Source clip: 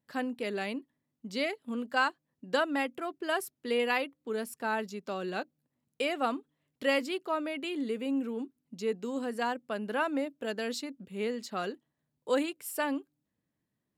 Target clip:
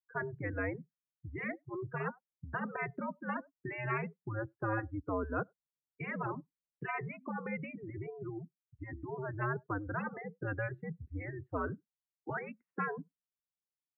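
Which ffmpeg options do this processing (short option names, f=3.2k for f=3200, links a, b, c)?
-filter_complex "[0:a]asplit=3[a][b][c];[a]afade=t=out:st=8.28:d=0.02[d];[b]equalizer=f=190:w=0.49:g=-13.5,afade=t=in:st=8.28:d=0.02,afade=t=out:st=8.78:d=0.02[e];[c]afade=t=in:st=8.78:d=0.02[f];[d][e][f]amix=inputs=3:normalize=0,asplit=2[g][h];[h]adelay=100,highpass=300,lowpass=3.4k,asoftclip=type=hard:threshold=-23.5dB,volume=-26dB[i];[g][i]amix=inputs=2:normalize=0,afftfilt=real='re*lt(hypot(re,im),0.141)':imag='im*lt(hypot(re,im),0.141)':win_size=1024:overlap=0.75,highpass=f=170:t=q:w=0.5412,highpass=f=170:t=q:w=1.307,lowpass=f=2.2k:t=q:w=0.5176,lowpass=f=2.2k:t=q:w=0.7071,lowpass=f=2.2k:t=q:w=1.932,afreqshift=-110,afftdn=nr=32:nf=-41,volume=2.5dB"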